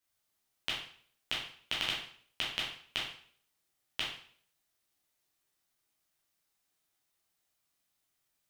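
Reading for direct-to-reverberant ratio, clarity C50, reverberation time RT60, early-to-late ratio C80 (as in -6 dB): -5.5 dB, 3.5 dB, 0.55 s, 8.0 dB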